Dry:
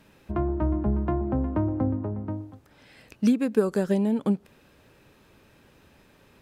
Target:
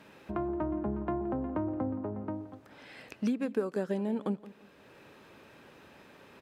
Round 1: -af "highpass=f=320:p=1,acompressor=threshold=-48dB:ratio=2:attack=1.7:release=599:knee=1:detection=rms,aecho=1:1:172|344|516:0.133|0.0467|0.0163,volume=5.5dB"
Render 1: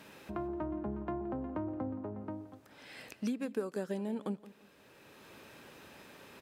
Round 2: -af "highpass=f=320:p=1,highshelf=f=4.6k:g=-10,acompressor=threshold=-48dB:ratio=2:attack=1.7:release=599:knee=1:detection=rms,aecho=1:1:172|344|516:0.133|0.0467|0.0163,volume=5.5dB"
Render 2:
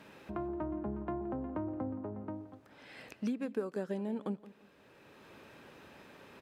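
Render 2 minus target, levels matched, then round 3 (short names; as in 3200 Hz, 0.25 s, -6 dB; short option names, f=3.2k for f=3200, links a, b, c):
compressor: peak gain reduction +5 dB
-af "highpass=f=320:p=1,highshelf=f=4.6k:g=-10,acompressor=threshold=-38.5dB:ratio=2:attack=1.7:release=599:knee=1:detection=rms,aecho=1:1:172|344|516:0.133|0.0467|0.0163,volume=5.5dB"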